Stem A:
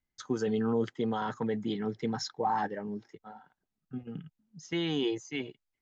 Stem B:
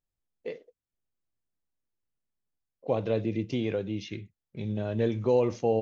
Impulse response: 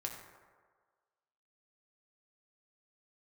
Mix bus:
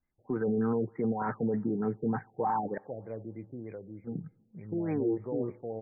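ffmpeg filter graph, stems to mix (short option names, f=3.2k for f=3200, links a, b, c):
-filter_complex "[0:a]alimiter=level_in=1.5dB:limit=-24dB:level=0:latency=1:release=12,volume=-1.5dB,volume=3dB,asplit=3[a][b][c];[a]atrim=end=2.78,asetpts=PTS-STARTPTS,afade=t=out:st=2.776:d=0.004:c=hsin[d];[b]atrim=start=2.78:end=4.04,asetpts=PTS-STARTPTS,volume=0[e];[c]atrim=start=4.04,asetpts=PTS-STARTPTS,afade=t=in:d=0.004:c=hsin[f];[d][e][f]concat=n=3:v=0:a=1,asplit=2[g][h];[h]volume=-20.5dB[i];[1:a]volume=-13.5dB,asplit=2[j][k];[k]volume=-15.5dB[l];[2:a]atrim=start_sample=2205[m];[i][l]amix=inputs=2:normalize=0[n];[n][m]afir=irnorm=-1:irlink=0[o];[g][j][o]amix=inputs=3:normalize=0,afftfilt=real='re*lt(b*sr/1024,740*pow(2500/740,0.5+0.5*sin(2*PI*3.3*pts/sr)))':imag='im*lt(b*sr/1024,740*pow(2500/740,0.5+0.5*sin(2*PI*3.3*pts/sr)))':win_size=1024:overlap=0.75"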